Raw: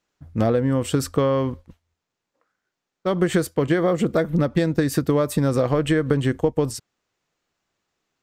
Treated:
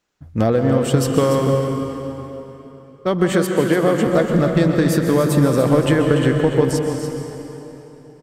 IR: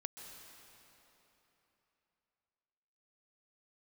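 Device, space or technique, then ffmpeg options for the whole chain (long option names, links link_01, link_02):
cave: -filter_complex "[0:a]aecho=1:1:290:0.335[link_01];[1:a]atrim=start_sample=2205[link_02];[link_01][link_02]afir=irnorm=-1:irlink=0,asettb=1/sr,asplit=3[link_03][link_04][link_05];[link_03]atrim=end=3.324[link_06];[link_04]atrim=start=3.32:end=4.07,asetpts=PTS-STARTPTS,afade=type=in:duration=0.004:curve=qsin,afade=type=out:start_time=0.746:duration=0.004:curve=qsin,highpass=150[link_07];[link_05]atrim=start=4.066[link_08];[link_06][link_07]acrossfade=duration=0.004:curve1=hsin:curve2=qsin[link_09];[link_09][link_08]acrossfade=duration=0.004:curve1=qsin:curve2=hsin,volume=7dB"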